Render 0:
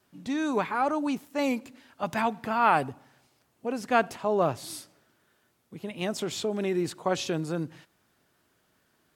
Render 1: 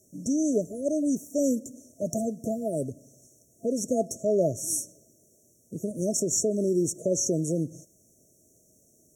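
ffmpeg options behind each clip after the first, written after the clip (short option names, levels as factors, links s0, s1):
-filter_complex "[0:a]asplit=2[s0][s1];[s1]acompressor=threshold=0.0178:ratio=6,volume=1.26[s2];[s0][s2]amix=inputs=2:normalize=0,afftfilt=real='re*(1-between(b*sr/4096,680,5500))':imag='im*(1-between(b*sr/4096,680,5500))':win_size=4096:overlap=0.75,equalizer=f=6500:t=o:w=1.4:g=10"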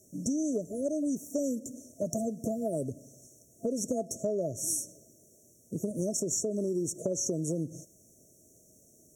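-af "acompressor=threshold=0.0355:ratio=10,volume=1.19"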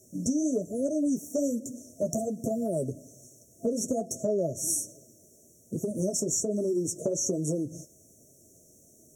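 -af "flanger=delay=7.1:depth=6.8:regen=-33:speed=1.2:shape=triangular,volume=2.11"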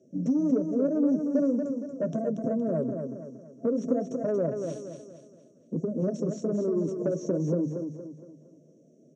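-af "asoftclip=type=tanh:threshold=0.0891,highpass=f=150:w=0.5412,highpass=f=150:w=1.3066,equalizer=f=160:t=q:w=4:g=7,equalizer=f=270:t=q:w=4:g=5,equalizer=f=510:t=q:w=4:g=5,equalizer=f=810:t=q:w=4:g=-6,equalizer=f=2100:t=q:w=4:g=-4,lowpass=f=3700:w=0.5412,lowpass=f=3700:w=1.3066,aecho=1:1:233|466|699|932|1165:0.501|0.205|0.0842|0.0345|0.0142"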